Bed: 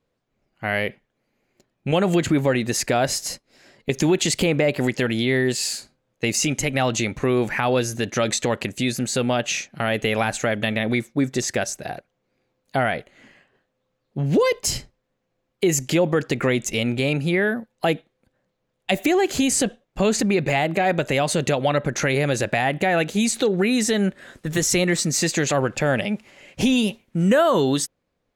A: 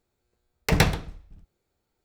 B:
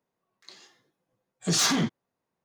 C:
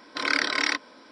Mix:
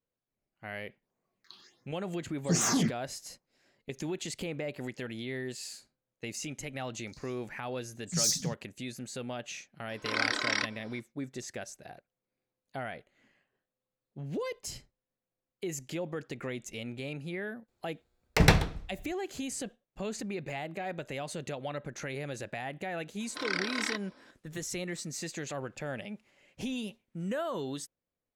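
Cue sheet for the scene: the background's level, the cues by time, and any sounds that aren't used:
bed -17 dB
1.02 s: add B -2 dB + phase shifter stages 6, 1.4 Hz, lowest notch 520–4200 Hz
6.65 s: add B -1.5 dB + elliptic band-stop 150–5200 Hz
9.89 s: add C -5.5 dB
17.68 s: add A -1 dB + treble shelf 11 kHz -7 dB
23.20 s: add C -9 dB

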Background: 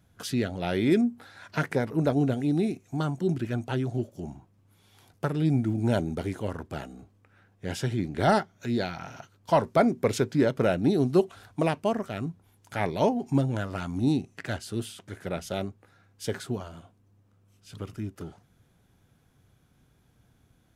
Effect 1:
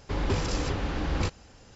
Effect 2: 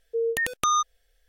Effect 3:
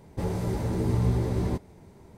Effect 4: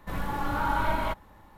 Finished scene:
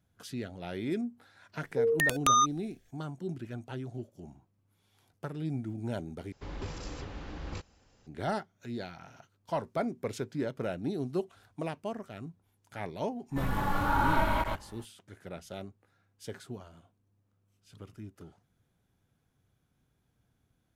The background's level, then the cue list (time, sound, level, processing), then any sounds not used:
background -10.5 dB
1.63 s: add 2 -1 dB
6.32 s: replace with 1 -12 dB
13.29 s: add 4 -1.5 dB, fades 0.05 s + chunks repeated in reverse 115 ms, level -3 dB
not used: 3

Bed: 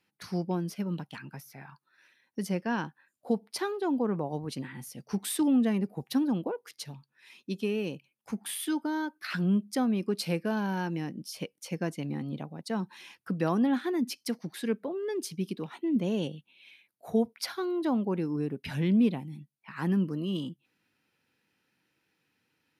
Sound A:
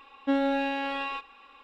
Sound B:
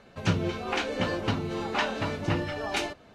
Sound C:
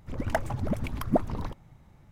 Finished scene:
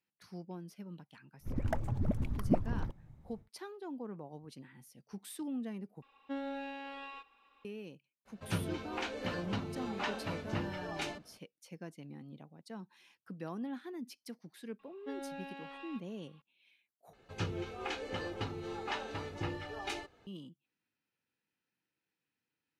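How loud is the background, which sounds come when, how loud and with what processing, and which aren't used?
bed -14.5 dB
1.38 s: add C -12 dB, fades 0.10 s + bass shelf 500 Hz +10.5 dB
6.02 s: replace with A -14 dB
8.25 s: add B -9.5 dB, fades 0.02 s
14.79 s: add A -17.5 dB
17.13 s: replace with B -11 dB + comb 2.4 ms, depth 47%

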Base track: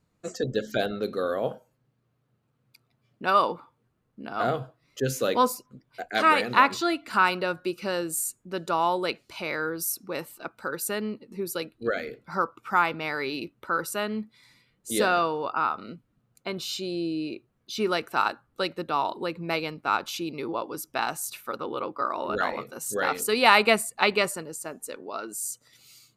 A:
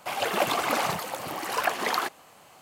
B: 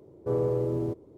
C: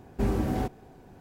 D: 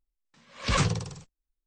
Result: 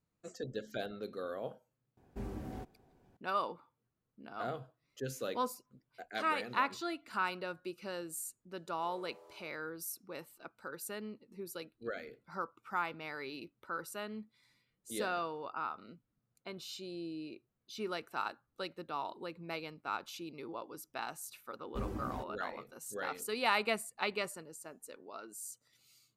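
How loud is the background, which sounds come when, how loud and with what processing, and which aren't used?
base track -13 dB
1.97 s: add C -15.5 dB
8.55 s: add B -13 dB + high-pass 720 Hz 24 dB/octave
21.56 s: add C -11.5 dB + expander on every frequency bin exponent 1.5
not used: A, D

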